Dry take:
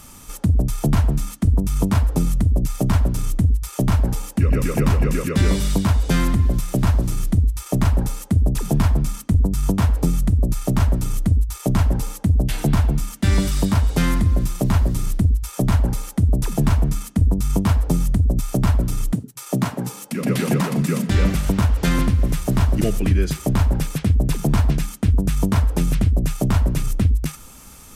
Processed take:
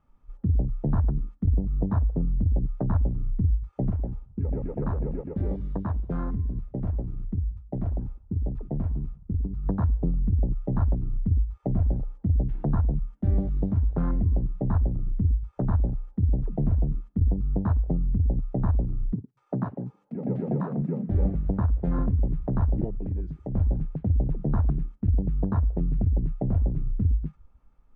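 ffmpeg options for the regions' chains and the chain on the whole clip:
-filter_complex "[0:a]asettb=1/sr,asplit=3[s0][s1][s2];[s0]atrim=end=3.904[s3];[s1]atrim=start=3.9:end=9.66,asetpts=PTS-STARTPTS,afade=t=in:d=0.004:c=qsin,afade=t=out:st=5.756:d=0.004:c=qsin,agate=range=0.0224:threshold=0.0794:ratio=3:release=100:detection=peak,lowshelf=f=260:g=-5.5,asplit=2[s4][s5];[s5]adelay=182,lowpass=f=960:p=1,volume=0.119,asplit=2[s6][s7];[s7]adelay=182,lowpass=f=960:p=1,volume=0.39,asplit=2[s8][s9];[s9]adelay=182,lowpass=f=960:p=1,volume=0.39[s10];[s4][s6][s8][s10]amix=inputs=4:normalize=0,atrim=end_sample=254016[s11];[s2]atrim=start=9.656[s12];[s3][s11]acrossfade=d=0.004:c1=hsin:c2=qsin[s13];[s13][s12]acrossfade=d=0.004:c1=qsin:c2=hsin,asettb=1/sr,asplit=3[s14][s15][s16];[s14]atrim=end=22.844[s17];[s15]atrim=start=22.84:end=23.55,asetpts=PTS-STARTPTS,afade=t=in:d=0.004:c=qsin,afade=t=out:st=0.706:d=0.004:c=qsin,highshelf=f=6500:g=7.5,acompressor=threshold=0.0631:ratio=2:attack=3.2:release=140:knee=1:detection=peak[s18];[s16]atrim=start=23.546[s19];[s17][s18]acrossfade=d=0.004:c1=hsin:c2=qsin[s20];[s20][s19]acrossfade=d=0.004:c1=qsin:c2=hsin,lowpass=1200,equalizer=f=240:t=o:w=2.3:g=-3,afwtdn=0.0501,volume=0.562"

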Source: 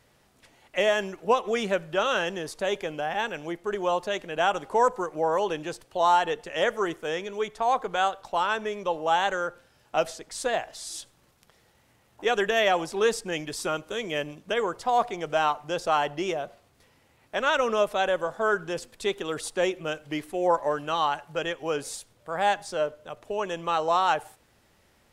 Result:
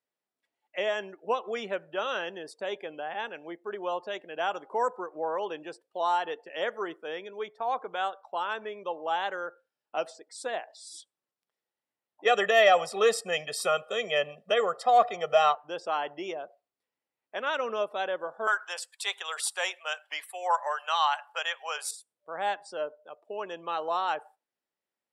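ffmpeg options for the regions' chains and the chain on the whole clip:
-filter_complex "[0:a]asettb=1/sr,asplit=3[s0][s1][s2];[s0]atrim=end=12.254[s3];[s1]atrim=start=12.25:end=15.55,asetpts=PTS-STARTPTS,afade=t=in:d=0.004:c=qsin,afade=t=out:st=3.296:d=0.004:c=qsin,aecho=1:1:1.6:0.96,atrim=end_sample=145530,acontrast=25[s4];[s2]atrim=start=15.546[s5];[s3][s4]acrossfade=d=0.004:c1=hsin:c2=qsin[s6];[s6][s5]acrossfade=d=0.004:c1=qsin:c2=hsin,asettb=1/sr,asplit=3[s7][s8][s9];[s7]atrim=end=18.474[s10];[s8]atrim=start=18.47:end=21.91,asetpts=PTS-STARTPTS,afade=t=in:d=0.004:c=qsin,afade=t=out:st=3.436:d=0.004:c=qsin,highpass=f=750:w=0.5412,highpass=f=750:w=1.3066,acontrast=76,highshelf=f=4500:g=6[s11];[s9]atrim=start=21.906[s12];[s10][s11]acrossfade=d=0.004:c1=hsin:c2=qsin[s13];[s13][s12]acrossfade=d=0.004:c1=qsin:c2=hsin,highpass=270,afftdn=nr=22:nf=-44,bandreject=f=6400:w=7.7,volume=0.501"

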